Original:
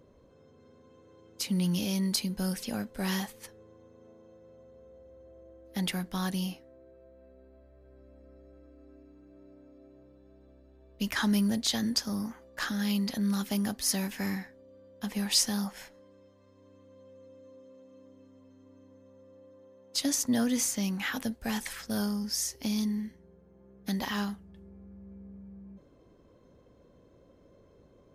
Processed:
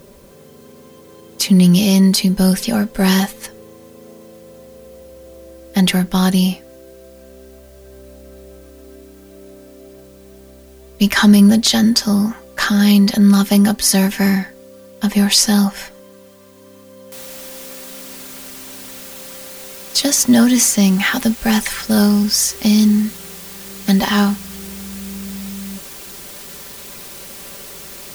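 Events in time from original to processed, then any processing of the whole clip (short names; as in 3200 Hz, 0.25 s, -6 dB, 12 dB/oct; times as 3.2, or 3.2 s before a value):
17.12 noise floor step -69 dB -51 dB
whole clip: comb 5.1 ms, depth 52%; maximiser +16 dB; gain -1 dB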